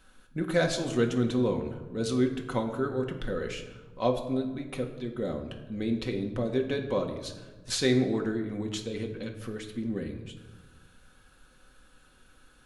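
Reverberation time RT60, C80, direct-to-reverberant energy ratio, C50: 1.3 s, 11.0 dB, 2.0 dB, 9.0 dB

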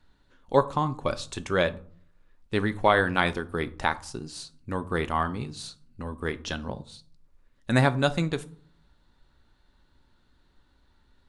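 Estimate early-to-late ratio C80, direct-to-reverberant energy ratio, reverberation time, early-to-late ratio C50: 23.5 dB, 11.0 dB, 0.50 s, 18.5 dB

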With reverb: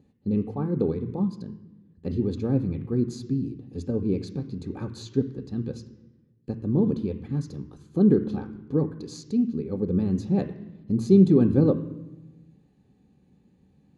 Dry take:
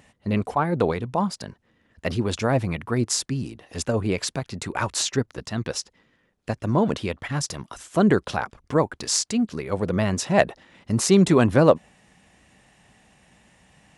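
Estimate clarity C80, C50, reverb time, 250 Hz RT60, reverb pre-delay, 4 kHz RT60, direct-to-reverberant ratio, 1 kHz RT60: 14.0 dB, 13.0 dB, 1.1 s, 1.4 s, 3 ms, 0.80 s, 10.0 dB, 1.0 s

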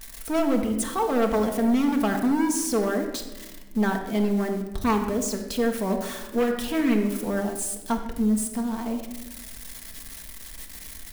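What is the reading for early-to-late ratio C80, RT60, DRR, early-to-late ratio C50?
8.5 dB, 1.1 s, 2.5 dB, 6.5 dB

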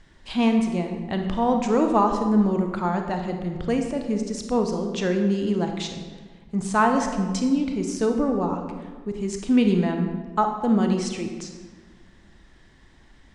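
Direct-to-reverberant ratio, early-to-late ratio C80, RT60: 4.0 dB, 7.5 dB, 1.5 s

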